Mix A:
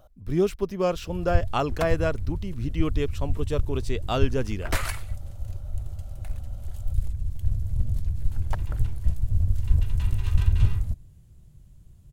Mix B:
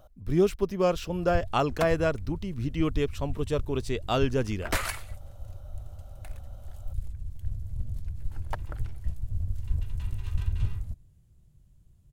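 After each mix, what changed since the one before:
first sound -8.0 dB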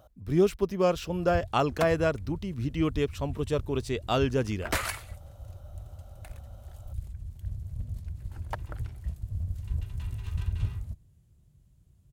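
master: add HPF 45 Hz

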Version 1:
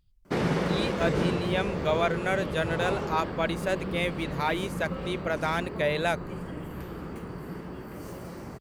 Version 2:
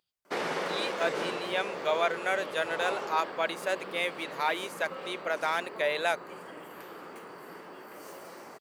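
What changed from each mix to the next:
master: add HPF 520 Hz 12 dB/oct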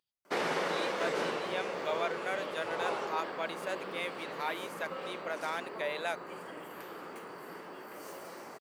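speech -7.0 dB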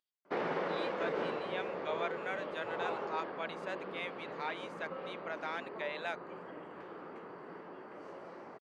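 speech: add tilt +4 dB/oct; master: add tape spacing loss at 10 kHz 33 dB

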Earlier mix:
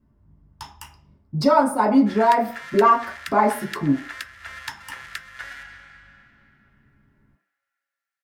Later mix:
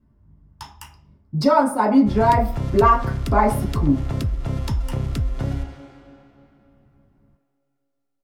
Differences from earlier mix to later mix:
background: remove resonant high-pass 1700 Hz, resonance Q 6.2; master: add low shelf 190 Hz +3.5 dB

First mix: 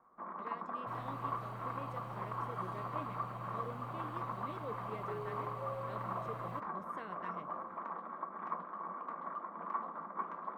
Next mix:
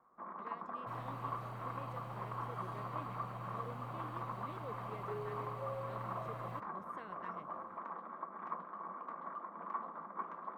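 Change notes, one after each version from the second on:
reverb: off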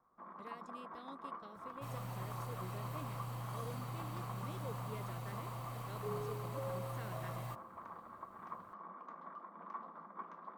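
first sound -5.5 dB; second sound: entry +0.95 s; master: add tone controls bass +4 dB, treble +15 dB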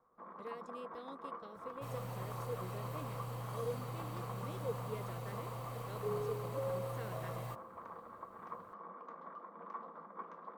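master: add bell 480 Hz +10.5 dB 0.32 oct

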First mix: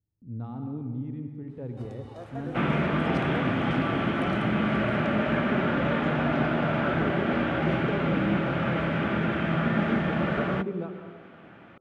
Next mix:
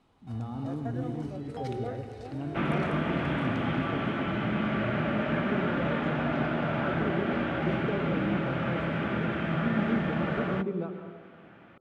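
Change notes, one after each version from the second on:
first sound: entry -1.50 s; second sound -3.5 dB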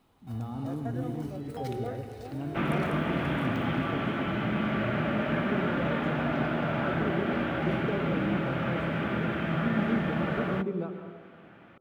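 master: remove Bessel low-pass 7100 Hz, order 8

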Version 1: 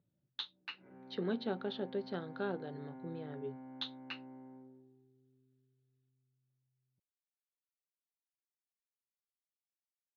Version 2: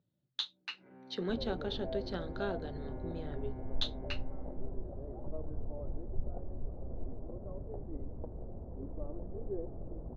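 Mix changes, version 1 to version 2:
second sound: unmuted; master: remove air absorption 200 m

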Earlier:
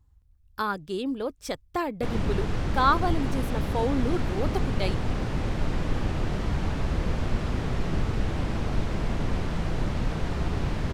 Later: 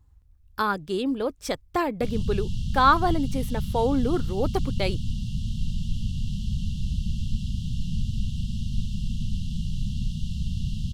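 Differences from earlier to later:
speech +3.5 dB; background: add brick-wall FIR band-stop 240–2700 Hz

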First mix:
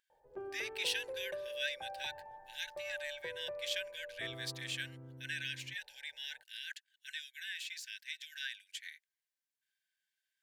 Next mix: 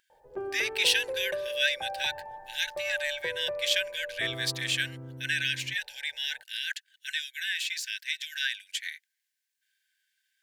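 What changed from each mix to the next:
speech +11.5 dB; background +9.0 dB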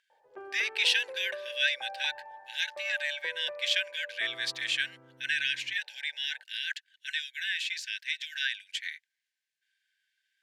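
master: add band-pass 2200 Hz, Q 0.59

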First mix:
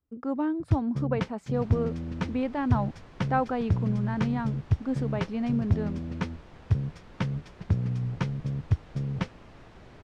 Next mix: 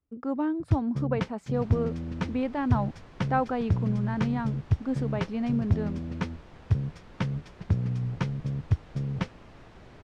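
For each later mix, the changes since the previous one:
none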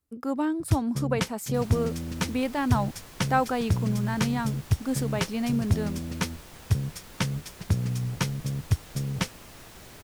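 master: remove tape spacing loss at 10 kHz 29 dB

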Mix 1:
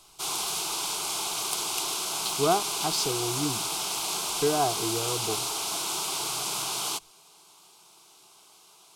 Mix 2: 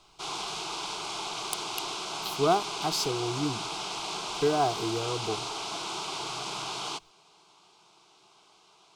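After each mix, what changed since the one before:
background: add air absorption 120 m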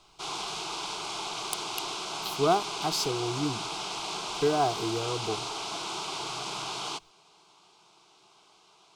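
none

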